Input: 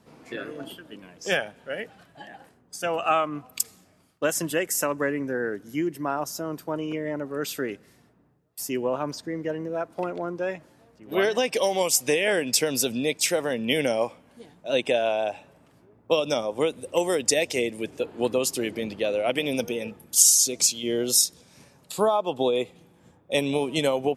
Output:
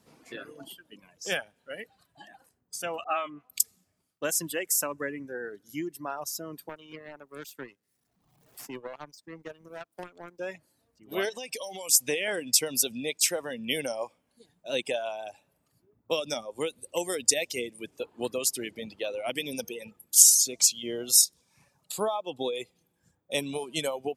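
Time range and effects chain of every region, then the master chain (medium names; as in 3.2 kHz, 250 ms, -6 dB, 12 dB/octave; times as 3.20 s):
3.04–3.50 s: tone controls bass -8 dB, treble -11 dB + phase dispersion highs, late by 57 ms, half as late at 1.5 kHz
6.69–10.39 s: jump at every zero crossing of -38.5 dBFS + power-law waveshaper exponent 2 + three bands compressed up and down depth 70%
11.29–11.89 s: band-stop 1.4 kHz, Q 10 + compression, threshold -26 dBFS
whole clip: reverb removal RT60 1.5 s; treble shelf 3.8 kHz +10 dB; trim -7 dB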